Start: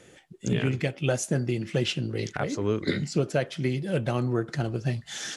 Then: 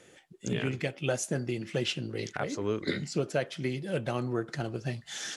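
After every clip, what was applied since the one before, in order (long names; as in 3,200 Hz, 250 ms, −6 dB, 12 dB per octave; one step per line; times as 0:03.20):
low-shelf EQ 190 Hz −7 dB
level −2.5 dB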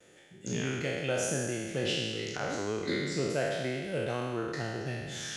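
peak hold with a decay on every bin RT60 1.71 s
noise gate with hold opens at −47 dBFS
level −5 dB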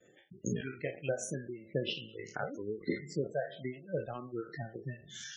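transient designer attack +9 dB, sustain −7 dB
reverb reduction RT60 1.3 s
gate on every frequency bin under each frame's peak −15 dB strong
level −4 dB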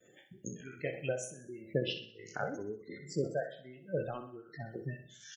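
high-shelf EQ 6,500 Hz +7.5 dB
shaped tremolo triangle 1.3 Hz, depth 90%
on a send: repeating echo 63 ms, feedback 47%, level −11 dB
on the sum: level +2.5 dB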